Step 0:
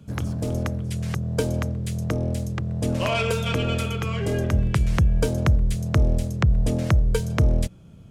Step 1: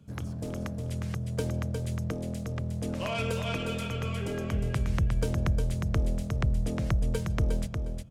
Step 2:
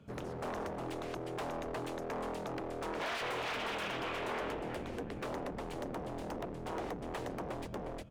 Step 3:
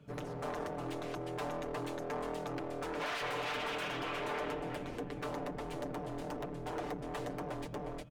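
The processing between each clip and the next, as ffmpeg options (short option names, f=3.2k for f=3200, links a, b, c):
-af "aecho=1:1:358|716|1074:0.531|0.106|0.0212,volume=-8.5dB"
-af "acompressor=threshold=-29dB:ratio=6,aeval=exprs='0.0168*(abs(mod(val(0)/0.0168+3,4)-2)-1)':c=same,bass=f=250:g=-12,treble=f=4k:g=-13,volume=5.5dB"
-af "aecho=1:1:6.8:0.65,volume=-1.5dB"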